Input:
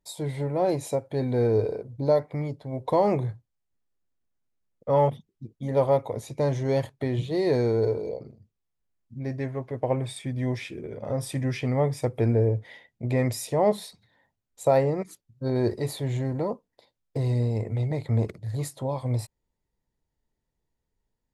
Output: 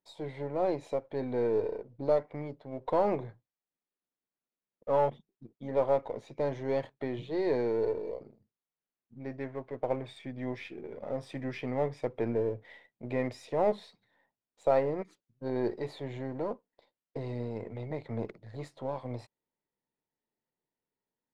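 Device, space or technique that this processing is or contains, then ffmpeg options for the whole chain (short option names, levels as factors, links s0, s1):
crystal radio: -af "highpass=220,lowpass=3200,aeval=exprs='if(lt(val(0),0),0.708*val(0),val(0))':c=same,volume=0.668"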